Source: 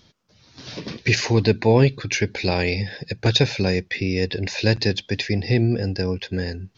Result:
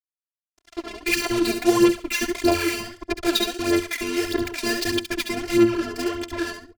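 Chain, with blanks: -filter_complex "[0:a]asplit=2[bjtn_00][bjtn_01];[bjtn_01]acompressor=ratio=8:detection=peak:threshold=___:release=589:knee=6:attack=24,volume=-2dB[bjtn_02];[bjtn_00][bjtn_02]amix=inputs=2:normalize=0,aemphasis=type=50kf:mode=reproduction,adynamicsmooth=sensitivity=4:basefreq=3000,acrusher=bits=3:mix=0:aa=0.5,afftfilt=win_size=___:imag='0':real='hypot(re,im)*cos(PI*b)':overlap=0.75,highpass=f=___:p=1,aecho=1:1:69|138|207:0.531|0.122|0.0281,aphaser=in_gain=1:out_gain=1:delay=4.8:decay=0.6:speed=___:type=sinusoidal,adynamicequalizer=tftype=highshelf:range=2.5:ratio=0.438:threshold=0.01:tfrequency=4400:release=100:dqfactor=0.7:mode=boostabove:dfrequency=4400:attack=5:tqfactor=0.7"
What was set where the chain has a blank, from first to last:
-32dB, 512, 44, 1.6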